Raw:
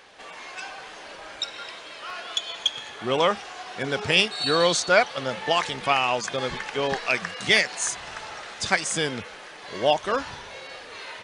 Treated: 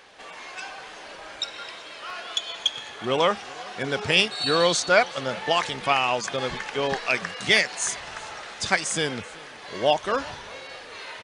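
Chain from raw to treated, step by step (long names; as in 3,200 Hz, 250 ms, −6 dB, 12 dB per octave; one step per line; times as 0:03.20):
single-tap delay 381 ms −23 dB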